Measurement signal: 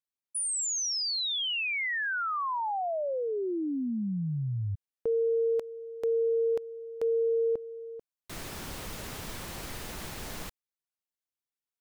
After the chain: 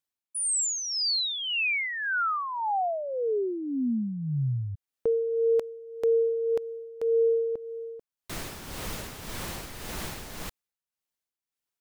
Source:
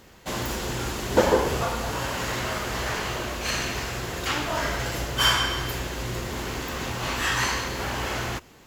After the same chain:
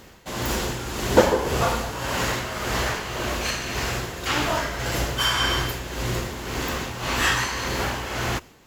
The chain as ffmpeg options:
-af "tremolo=f=1.8:d=0.58,volume=1.78"

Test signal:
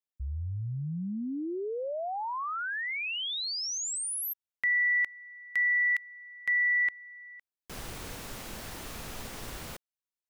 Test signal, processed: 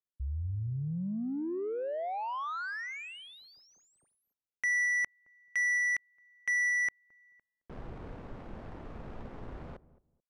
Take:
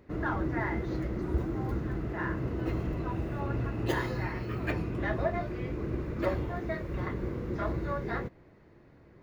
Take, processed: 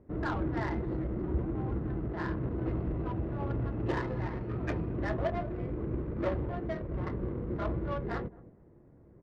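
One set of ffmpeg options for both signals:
-filter_complex "[0:a]asoftclip=type=tanh:threshold=0.0944,asplit=2[s0][s1];[s1]adelay=218,lowpass=f=1000:p=1,volume=0.15,asplit=2[s2][s3];[s3]adelay=218,lowpass=f=1000:p=1,volume=0.22[s4];[s2][s4]amix=inputs=2:normalize=0[s5];[s0][s5]amix=inputs=2:normalize=0,adynamicsmooth=sensitivity=2.5:basefreq=830"

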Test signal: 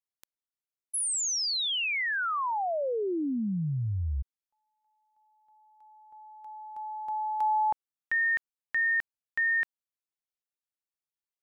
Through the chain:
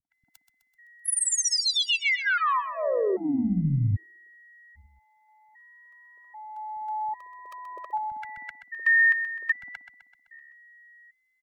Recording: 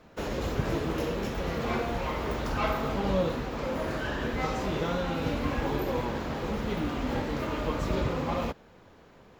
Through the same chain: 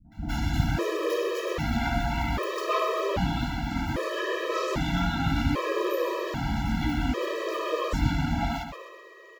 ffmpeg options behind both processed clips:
-filter_complex "[0:a]aeval=exprs='val(0)+0.00126*sin(2*PI*1900*n/s)':c=same,acrossover=split=200|640[s0][s1][s2];[s1]adelay=50[s3];[s2]adelay=120[s4];[s0][s3][s4]amix=inputs=3:normalize=0,tremolo=f=140:d=0.261,asplit=2[s5][s6];[s6]aecho=0:1:128|256|384|512|640|768:0.316|0.171|0.0922|0.0498|0.0269|0.0145[s7];[s5][s7]amix=inputs=2:normalize=0,afftfilt=real='re*gt(sin(2*PI*0.63*pts/sr)*(1-2*mod(floor(b*sr/1024/330),2)),0)':imag='im*gt(sin(2*PI*0.63*pts/sr)*(1-2*mod(floor(b*sr/1024/330),2)),0)':win_size=1024:overlap=0.75,volume=2.51"

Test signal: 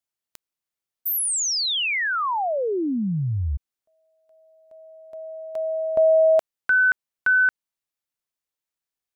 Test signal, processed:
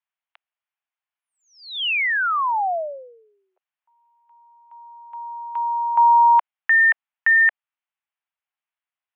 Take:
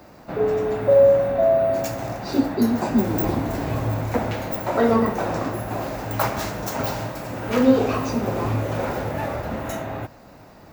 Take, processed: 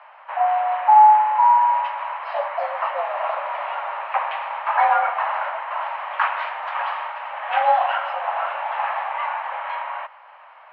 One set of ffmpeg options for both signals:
-af "highpass=f=370:t=q:w=0.5412,highpass=f=370:t=q:w=1.307,lowpass=f=2800:t=q:w=0.5176,lowpass=f=2800:t=q:w=0.7071,lowpass=f=2800:t=q:w=1.932,afreqshift=300,volume=1.41"

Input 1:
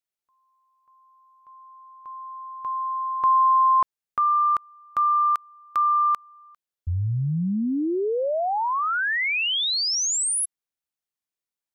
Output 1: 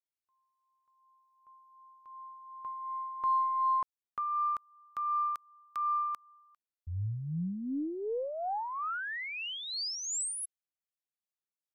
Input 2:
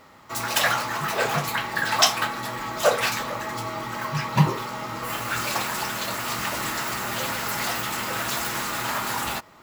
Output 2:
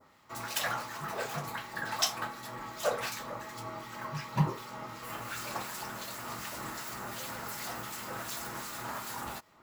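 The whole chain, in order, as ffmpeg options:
-filter_complex "[0:a]acrossover=split=1900[s0][s1];[s0]aeval=exprs='val(0)*(1-0.5/2+0.5/2*cos(2*PI*2.7*n/s))':c=same[s2];[s1]aeval=exprs='val(0)*(1-0.5/2-0.5/2*cos(2*PI*2.7*n/s))':c=same[s3];[s2][s3]amix=inputs=2:normalize=0,adynamicequalizer=threshold=0.0112:dfrequency=2700:dqfactor=0.98:tfrequency=2700:tqfactor=0.98:attack=5:release=100:ratio=0.375:range=2.5:mode=cutabove:tftype=bell,aeval=exprs='0.422*(cos(1*acos(clip(val(0)/0.422,-1,1)))-cos(1*PI/2))+0.0168*(cos(2*acos(clip(val(0)/0.422,-1,1)))-cos(2*PI/2))+0.00299*(cos(8*acos(clip(val(0)/0.422,-1,1)))-cos(8*PI/2))':c=same,volume=0.376"

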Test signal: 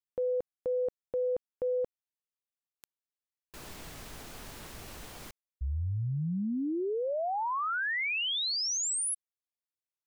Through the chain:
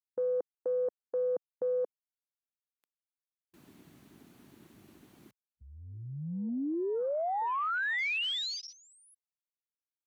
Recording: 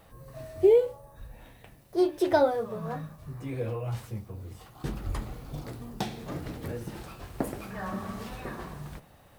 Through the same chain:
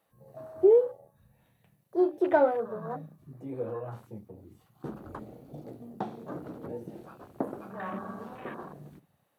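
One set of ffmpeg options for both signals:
-filter_complex "[0:a]bandreject=f=5100:w=17,acrossover=split=4200[s0][s1];[s1]acompressor=threshold=0.00282:ratio=4:attack=1:release=60[s2];[s0][s2]amix=inputs=2:normalize=0,afwtdn=0.00891,highpass=210,equalizer=f=12000:w=2.8:g=6.5"

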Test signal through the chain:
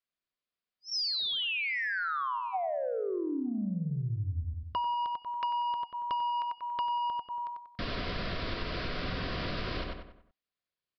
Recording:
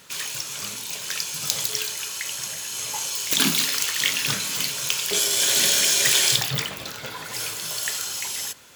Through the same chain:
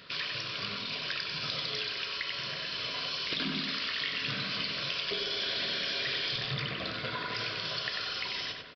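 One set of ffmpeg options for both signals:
-filter_complex "[0:a]acontrast=67,aresample=11025,asoftclip=type=tanh:threshold=0.266,aresample=44100,asuperstop=centerf=850:order=20:qfactor=5.3,asplit=2[s0][s1];[s1]adelay=94,lowpass=f=3000:p=1,volume=0.668,asplit=2[s2][s3];[s3]adelay=94,lowpass=f=3000:p=1,volume=0.42,asplit=2[s4][s5];[s5]adelay=94,lowpass=f=3000:p=1,volume=0.42,asplit=2[s6][s7];[s7]adelay=94,lowpass=f=3000:p=1,volume=0.42,asplit=2[s8][s9];[s9]adelay=94,lowpass=f=3000:p=1,volume=0.42[s10];[s0][s2][s4][s6][s8][s10]amix=inputs=6:normalize=0,acompressor=threshold=0.0631:ratio=6,volume=0.473"

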